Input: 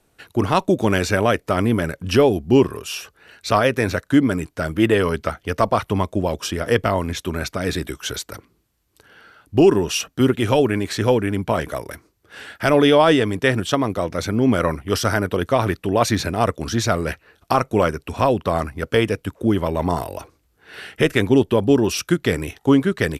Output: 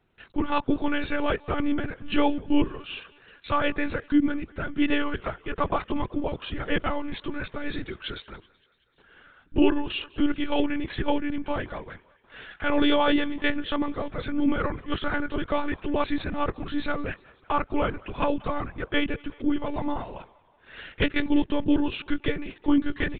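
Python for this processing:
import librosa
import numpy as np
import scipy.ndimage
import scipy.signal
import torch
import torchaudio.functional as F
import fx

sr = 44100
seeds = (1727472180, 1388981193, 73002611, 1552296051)

p1 = fx.peak_eq(x, sr, hz=610.0, db=-6.5, octaves=0.32)
p2 = p1 + fx.echo_thinned(p1, sr, ms=188, feedback_pct=64, hz=390.0, wet_db=-23.5, dry=0)
p3 = fx.lpc_monotone(p2, sr, seeds[0], pitch_hz=290.0, order=16)
y = F.gain(torch.from_numpy(p3), -5.5).numpy()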